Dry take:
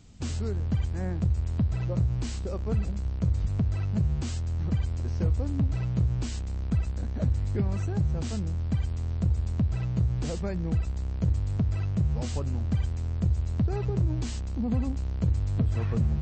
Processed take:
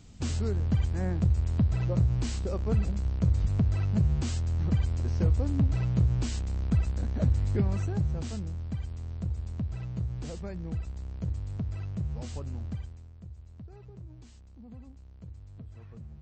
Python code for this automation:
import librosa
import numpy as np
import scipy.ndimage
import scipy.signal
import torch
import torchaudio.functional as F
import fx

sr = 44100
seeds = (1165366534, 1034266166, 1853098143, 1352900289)

y = fx.gain(x, sr, db=fx.line((7.57, 1.0), (8.75, -7.0), (12.66, -7.0), (13.13, -20.0)))